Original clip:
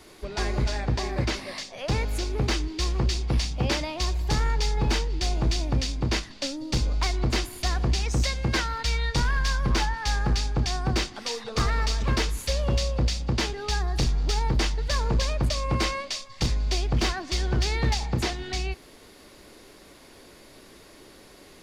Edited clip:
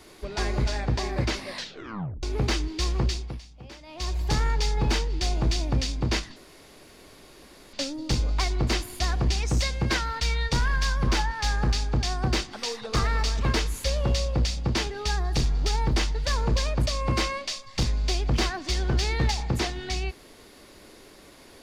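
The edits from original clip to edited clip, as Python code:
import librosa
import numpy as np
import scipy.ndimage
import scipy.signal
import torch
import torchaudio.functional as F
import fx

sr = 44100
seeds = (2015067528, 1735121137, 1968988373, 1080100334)

y = fx.edit(x, sr, fx.tape_stop(start_s=1.53, length_s=0.7),
    fx.fade_down_up(start_s=3.03, length_s=1.17, db=-19.0, fade_s=0.37),
    fx.insert_room_tone(at_s=6.36, length_s=1.37), tone=tone)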